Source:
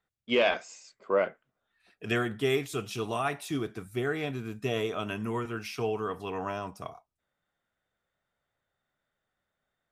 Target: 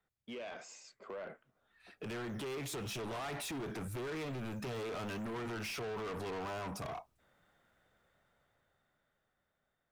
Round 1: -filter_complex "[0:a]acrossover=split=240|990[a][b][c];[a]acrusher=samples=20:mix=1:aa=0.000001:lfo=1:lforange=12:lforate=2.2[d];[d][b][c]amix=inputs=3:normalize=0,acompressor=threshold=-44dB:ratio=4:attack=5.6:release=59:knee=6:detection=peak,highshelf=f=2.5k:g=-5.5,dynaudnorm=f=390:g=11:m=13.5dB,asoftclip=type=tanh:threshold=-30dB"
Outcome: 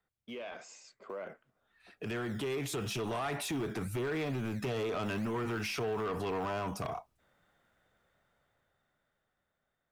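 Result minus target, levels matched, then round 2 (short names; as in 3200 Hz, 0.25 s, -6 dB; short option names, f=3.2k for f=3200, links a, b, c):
decimation with a swept rate: distortion +11 dB; soft clip: distortion -6 dB
-filter_complex "[0:a]acrossover=split=240|990[a][b][c];[a]acrusher=samples=6:mix=1:aa=0.000001:lfo=1:lforange=3.6:lforate=2.2[d];[d][b][c]amix=inputs=3:normalize=0,acompressor=threshold=-44dB:ratio=4:attack=5.6:release=59:knee=6:detection=peak,highshelf=f=2.5k:g=-5.5,dynaudnorm=f=390:g=11:m=13.5dB,asoftclip=type=tanh:threshold=-38.5dB"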